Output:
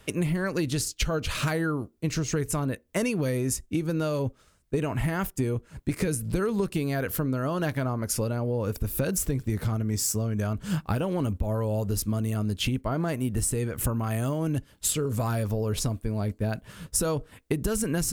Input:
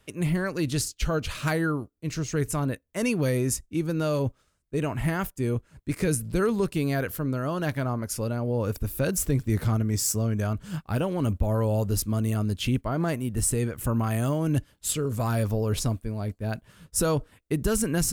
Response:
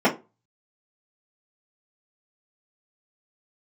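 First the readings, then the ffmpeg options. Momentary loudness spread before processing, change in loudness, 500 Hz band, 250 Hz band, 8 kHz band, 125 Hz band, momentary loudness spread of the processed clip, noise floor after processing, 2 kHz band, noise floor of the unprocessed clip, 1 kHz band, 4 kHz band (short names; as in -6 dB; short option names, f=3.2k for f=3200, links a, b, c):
6 LU, -1.0 dB, -1.0 dB, -1.0 dB, 0.0 dB, -1.5 dB, 4 LU, -62 dBFS, -1.0 dB, -69 dBFS, -1.0 dB, +1.0 dB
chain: -filter_complex "[0:a]acompressor=threshold=-32dB:ratio=12,asplit=2[a][b];[1:a]atrim=start_sample=2205[c];[b][c]afir=irnorm=-1:irlink=0,volume=-40dB[d];[a][d]amix=inputs=2:normalize=0,volume=8.5dB"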